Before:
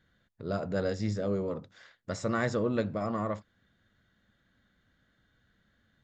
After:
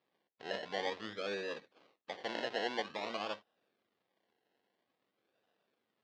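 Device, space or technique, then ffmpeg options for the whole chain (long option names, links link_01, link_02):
circuit-bent sampling toy: -filter_complex "[0:a]acrusher=samples=29:mix=1:aa=0.000001:lfo=1:lforange=17.4:lforate=0.5,highpass=530,equalizer=frequency=610:width_type=q:width=4:gain=-4,equalizer=frequency=920:width_type=q:width=4:gain=-5,equalizer=frequency=1400:width_type=q:width=4:gain=-6,equalizer=frequency=2300:width_type=q:width=4:gain=-3,lowpass=frequency=4400:width=0.5412,lowpass=frequency=4400:width=1.3066,asettb=1/sr,asplit=3[link_01][link_02][link_03];[link_01]atrim=end=1.604[link_04];[link_02]atrim=start=1.6:end=2.9,asetpts=PTS-STARTPTS,afade=type=in:duration=0.004:curve=qsin,afade=type=out:start_time=1.296:duration=0.004:curve=qsin,highpass=frequency=160:poles=1[link_05];[link_03]atrim=start=2.896[link_06];[link_04][link_05]acrossfade=duration=0.004:curve1=hsin:curve2=qsin[link_07];[link_07][link_06]acrossfade=duration=0.004:curve1=qsin:curve2=hsin,volume=-1dB"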